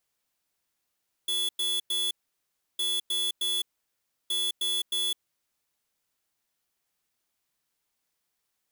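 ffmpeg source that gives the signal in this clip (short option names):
-f lavfi -i "aevalsrc='0.0398*(2*lt(mod(3420*t,1),0.5)-1)*clip(min(mod(mod(t,1.51),0.31),0.21-mod(mod(t,1.51),0.31))/0.005,0,1)*lt(mod(t,1.51),0.93)':d=4.53:s=44100"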